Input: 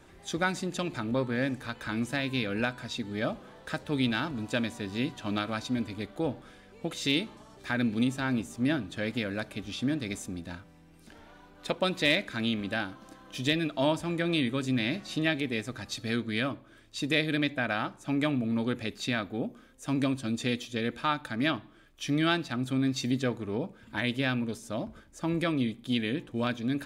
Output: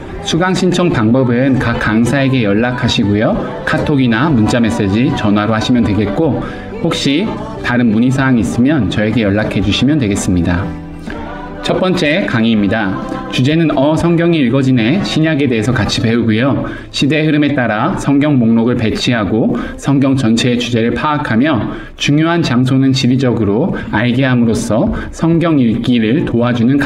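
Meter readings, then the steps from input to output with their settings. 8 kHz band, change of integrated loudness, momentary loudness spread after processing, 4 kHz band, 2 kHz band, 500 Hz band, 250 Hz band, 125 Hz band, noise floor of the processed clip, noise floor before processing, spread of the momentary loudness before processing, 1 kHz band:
+16.5 dB, +18.0 dB, 6 LU, +14.0 dB, +15.0 dB, +18.5 dB, +19.5 dB, +21.5 dB, -25 dBFS, -56 dBFS, 9 LU, +17.5 dB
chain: bin magnitudes rounded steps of 15 dB; LPF 1400 Hz 6 dB/oct; compressor 4:1, threshold -37 dBFS, peak gain reduction 12 dB; maximiser +33 dB; sustainer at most 54 dB/s; gain -2.5 dB

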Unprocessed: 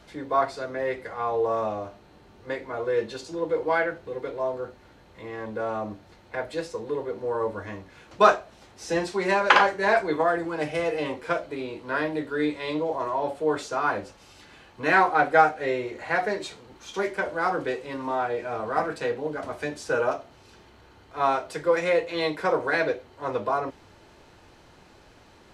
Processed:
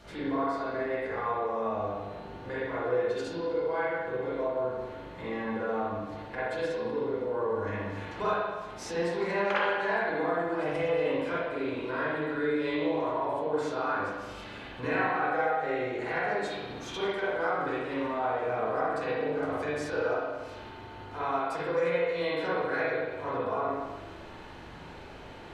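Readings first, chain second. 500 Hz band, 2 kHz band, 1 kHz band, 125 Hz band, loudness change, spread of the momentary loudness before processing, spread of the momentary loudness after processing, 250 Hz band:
-3.5 dB, -5.5 dB, -6.0 dB, -1.0 dB, -5.0 dB, 15 LU, 12 LU, -2.0 dB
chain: compressor 3:1, threshold -39 dBFS, peak gain reduction 20 dB; spring tank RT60 1.3 s, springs 40/58 ms, chirp 25 ms, DRR -9 dB; gain -1.5 dB

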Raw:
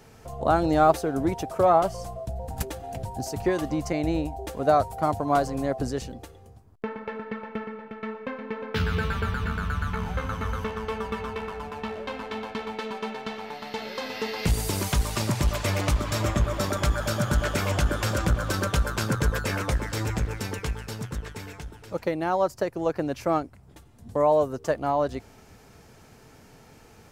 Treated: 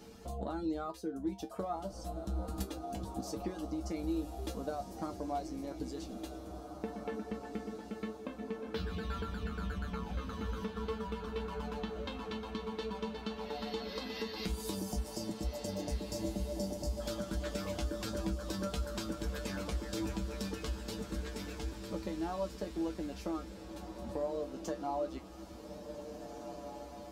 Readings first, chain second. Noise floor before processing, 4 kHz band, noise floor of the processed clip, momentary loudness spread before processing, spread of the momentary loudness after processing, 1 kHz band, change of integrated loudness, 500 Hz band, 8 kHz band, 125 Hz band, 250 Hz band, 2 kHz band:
-52 dBFS, -9.5 dB, -48 dBFS, 13 LU, 6 LU, -15.5 dB, -12.5 dB, -12.5 dB, -11.5 dB, -13.5 dB, -8.0 dB, -15.5 dB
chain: reverb removal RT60 0.62 s; spectral delete 14.75–17, 950–4400 Hz; ten-band EQ 125 Hz -4 dB, 250 Hz +10 dB, 2000 Hz -4 dB, 4000 Hz +6 dB; compressor 6:1, threshold -33 dBFS, peak gain reduction 18 dB; resonator 65 Hz, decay 0.16 s, harmonics odd, mix 90%; diffused feedback echo 1.765 s, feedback 45%, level -8 dB; gain +3.5 dB

